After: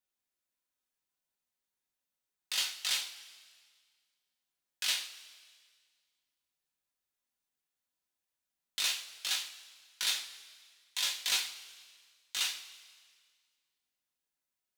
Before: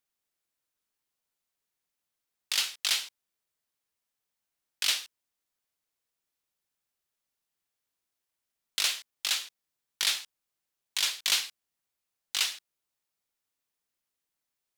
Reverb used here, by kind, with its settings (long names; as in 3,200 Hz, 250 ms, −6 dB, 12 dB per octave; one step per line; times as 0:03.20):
coupled-rooms reverb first 0.25 s, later 1.8 s, from −18 dB, DRR −1 dB
level −7.5 dB